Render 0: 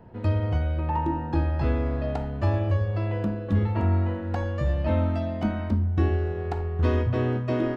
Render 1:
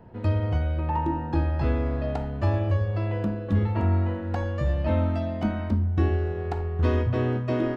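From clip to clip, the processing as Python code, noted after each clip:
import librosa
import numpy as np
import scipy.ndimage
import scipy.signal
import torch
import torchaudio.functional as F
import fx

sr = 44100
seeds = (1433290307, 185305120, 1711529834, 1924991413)

y = x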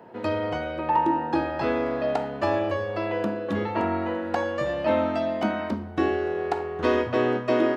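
y = scipy.signal.sosfilt(scipy.signal.butter(2, 340.0, 'highpass', fs=sr, output='sos'), x)
y = y * librosa.db_to_amplitude(7.0)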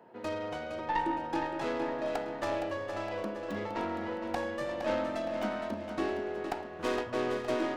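y = fx.tracing_dist(x, sr, depth_ms=0.18)
y = fx.low_shelf(y, sr, hz=120.0, db=-8.5)
y = fx.echo_feedback(y, sr, ms=464, feedback_pct=47, wet_db=-8.0)
y = y * librosa.db_to_amplitude(-8.5)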